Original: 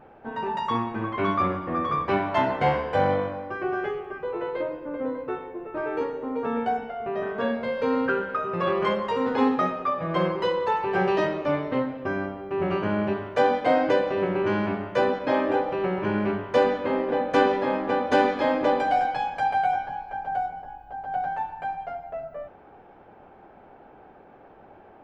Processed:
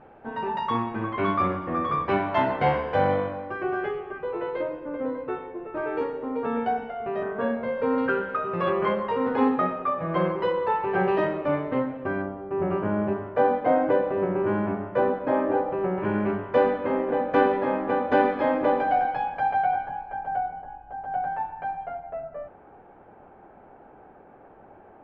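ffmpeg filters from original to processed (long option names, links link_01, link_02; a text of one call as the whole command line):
ffmpeg -i in.wav -af "asetnsamples=nb_out_samples=441:pad=0,asendcmd='7.23 lowpass f 1900;7.98 lowpass f 3500;8.7 lowpass f 2300;12.22 lowpass f 1400;15.98 lowpass f 2100',lowpass=3800" out.wav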